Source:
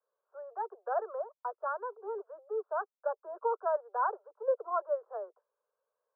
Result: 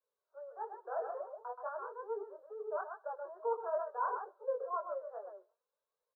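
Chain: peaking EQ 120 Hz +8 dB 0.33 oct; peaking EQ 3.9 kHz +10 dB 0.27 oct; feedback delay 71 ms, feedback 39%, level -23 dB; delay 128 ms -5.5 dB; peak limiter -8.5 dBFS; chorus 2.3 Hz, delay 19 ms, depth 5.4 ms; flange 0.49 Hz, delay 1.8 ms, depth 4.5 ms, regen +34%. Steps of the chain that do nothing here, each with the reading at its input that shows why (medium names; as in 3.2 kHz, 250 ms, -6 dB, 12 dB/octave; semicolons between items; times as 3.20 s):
peaking EQ 120 Hz: input has nothing below 340 Hz; peaking EQ 3.9 kHz: input has nothing above 1.7 kHz; peak limiter -8.5 dBFS: peak at its input -20.0 dBFS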